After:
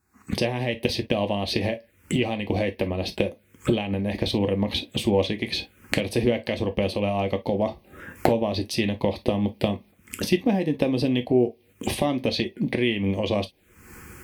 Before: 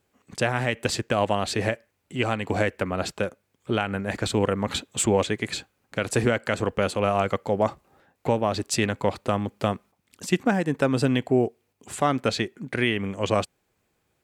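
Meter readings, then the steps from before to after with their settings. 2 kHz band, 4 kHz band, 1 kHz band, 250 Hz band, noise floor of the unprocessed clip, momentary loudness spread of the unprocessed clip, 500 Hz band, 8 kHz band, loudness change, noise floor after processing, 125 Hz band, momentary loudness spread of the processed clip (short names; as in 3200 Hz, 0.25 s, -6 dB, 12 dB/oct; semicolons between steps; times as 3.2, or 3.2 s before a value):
-3.0 dB, +2.5 dB, -4.5 dB, +2.5 dB, -73 dBFS, 8 LU, +0.5 dB, -7.5 dB, 0.0 dB, -60 dBFS, +0.5 dB, 7 LU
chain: recorder AGC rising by 57 dB/s; envelope phaser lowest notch 540 Hz, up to 1400 Hz, full sweep at -25 dBFS; non-linear reverb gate 80 ms falling, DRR 7 dB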